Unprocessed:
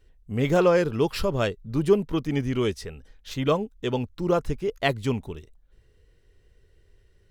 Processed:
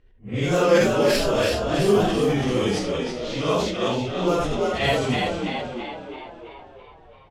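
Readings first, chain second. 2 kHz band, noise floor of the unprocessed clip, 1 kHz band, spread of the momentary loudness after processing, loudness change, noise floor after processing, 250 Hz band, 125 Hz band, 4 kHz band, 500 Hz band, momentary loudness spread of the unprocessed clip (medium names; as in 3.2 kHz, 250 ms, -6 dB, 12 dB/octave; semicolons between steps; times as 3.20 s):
+6.0 dB, -61 dBFS, +5.5 dB, 14 LU, +3.0 dB, -50 dBFS, +3.0 dB, +1.5 dB, +8.0 dB, +3.5 dB, 12 LU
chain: phase randomisation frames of 200 ms; peaking EQ 8.1 kHz +8 dB 2.9 oct; on a send: frequency-shifting echo 332 ms, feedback 59%, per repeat +55 Hz, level -4 dB; on the sum: level-controlled noise filter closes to 2.1 kHz, open at -16.5 dBFS; decay stretcher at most 45 dB/s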